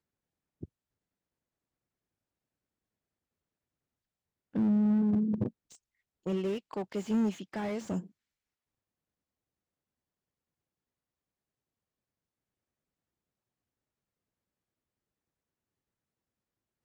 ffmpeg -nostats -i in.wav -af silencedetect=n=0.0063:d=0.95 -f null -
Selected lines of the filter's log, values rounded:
silence_start: 0.65
silence_end: 4.55 | silence_duration: 3.90
silence_start: 8.06
silence_end: 16.85 | silence_duration: 8.79